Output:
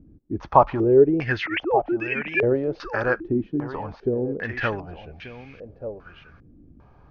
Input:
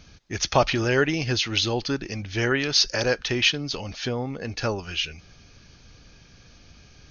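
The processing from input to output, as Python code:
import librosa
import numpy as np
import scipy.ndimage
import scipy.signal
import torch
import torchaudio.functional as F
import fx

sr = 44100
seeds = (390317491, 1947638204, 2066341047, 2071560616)

y = fx.sine_speech(x, sr, at=(1.46, 2.43))
y = y + 10.0 ** (-12.0 / 20.0) * np.pad(y, (int(1186 * sr / 1000.0), 0))[:len(y)]
y = fx.filter_held_lowpass(y, sr, hz=2.5, low_hz=300.0, high_hz=2400.0)
y = F.gain(torch.from_numpy(y), -1.5).numpy()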